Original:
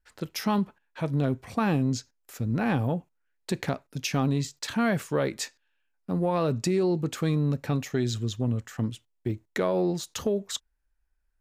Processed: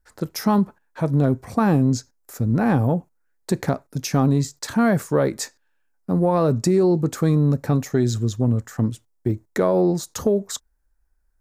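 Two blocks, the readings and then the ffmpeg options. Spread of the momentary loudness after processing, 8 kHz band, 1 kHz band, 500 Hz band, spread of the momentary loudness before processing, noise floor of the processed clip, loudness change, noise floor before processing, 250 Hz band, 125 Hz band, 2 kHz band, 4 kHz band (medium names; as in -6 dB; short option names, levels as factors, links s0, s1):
9 LU, +5.5 dB, +6.0 dB, +7.0 dB, 9 LU, -67 dBFS, +7.0 dB, -74 dBFS, +7.5 dB, +7.5 dB, +2.5 dB, +0.5 dB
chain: -af "equalizer=f=2900:t=o:w=1.1:g=-13,volume=2.37"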